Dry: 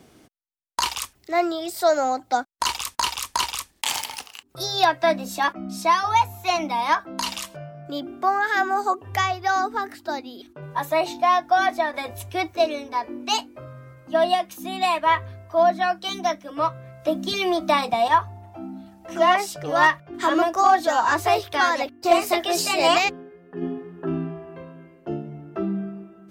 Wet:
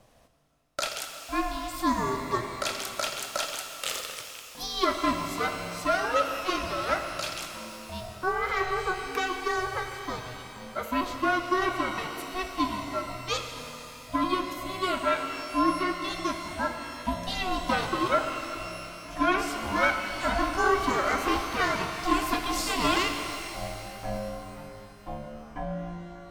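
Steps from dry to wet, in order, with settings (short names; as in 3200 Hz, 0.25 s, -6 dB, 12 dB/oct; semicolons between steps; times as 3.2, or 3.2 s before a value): ring modulator 370 Hz; shimmer reverb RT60 3 s, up +12 st, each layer -8 dB, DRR 5 dB; gain -4.5 dB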